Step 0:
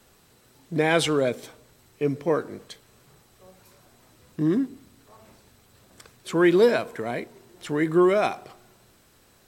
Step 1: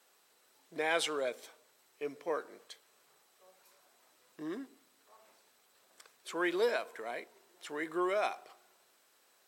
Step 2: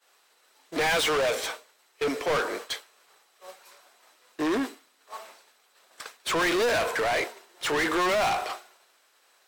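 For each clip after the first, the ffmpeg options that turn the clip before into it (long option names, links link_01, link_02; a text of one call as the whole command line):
ffmpeg -i in.wav -af "highpass=540,volume=-8dB" out.wav
ffmpeg -i in.wav -filter_complex "[0:a]asplit=2[link_01][link_02];[link_02]highpass=frequency=720:poles=1,volume=36dB,asoftclip=type=tanh:threshold=-18dB[link_03];[link_01][link_03]amix=inputs=2:normalize=0,lowpass=frequency=5300:poles=1,volume=-6dB,agate=range=-33dB:threshold=-28dB:ratio=3:detection=peak" out.wav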